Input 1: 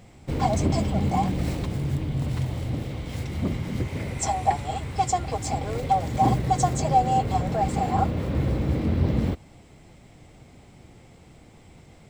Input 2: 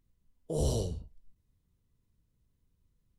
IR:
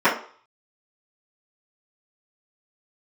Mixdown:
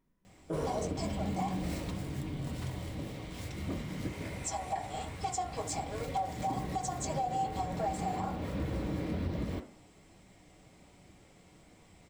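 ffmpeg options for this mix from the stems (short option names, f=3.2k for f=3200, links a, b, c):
-filter_complex "[0:a]highshelf=f=2.7k:g=7.5,flanger=delay=0.4:depth=7.4:regen=-61:speed=1.2:shape=triangular,adelay=250,volume=-6.5dB,asplit=2[a][b];[b]volume=-23dB[c];[1:a]asoftclip=type=tanh:threshold=-30dB,volume=-5.5dB,asplit=2[d][e];[e]volume=-10dB[f];[2:a]atrim=start_sample=2205[g];[c][f]amix=inputs=2:normalize=0[h];[h][g]afir=irnorm=-1:irlink=0[i];[a][d][i]amix=inputs=3:normalize=0,alimiter=level_in=0.5dB:limit=-24dB:level=0:latency=1:release=209,volume=-0.5dB"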